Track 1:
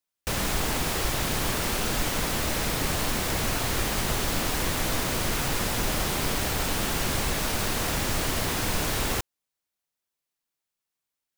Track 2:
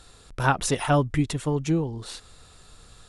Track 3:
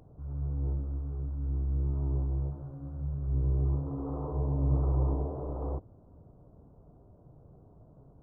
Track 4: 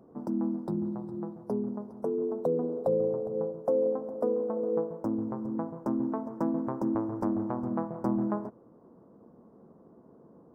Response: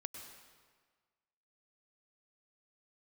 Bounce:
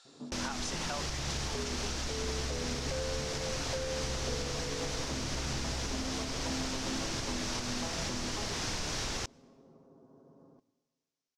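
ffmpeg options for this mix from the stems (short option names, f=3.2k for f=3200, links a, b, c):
-filter_complex "[0:a]adelay=50,volume=-7dB,asplit=2[a][b];[b]volume=-23dB[c];[1:a]highpass=670,volume=-9dB[d];[2:a]acompressor=threshold=-30dB:ratio=6,adelay=750,volume=-2.5dB[e];[3:a]aecho=1:1:7.4:0.69,asoftclip=type=tanh:threshold=-23dB,adelay=50,volume=-7dB,asplit=2[f][g];[g]volume=-8dB[h];[4:a]atrim=start_sample=2205[i];[c][h]amix=inputs=2:normalize=0[j];[j][i]afir=irnorm=-1:irlink=0[k];[a][d][e][f][k]amix=inputs=5:normalize=0,lowpass=f=5.8k:t=q:w=2.6,alimiter=level_in=1dB:limit=-24dB:level=0:latency=1:release=307,volume=-1dB"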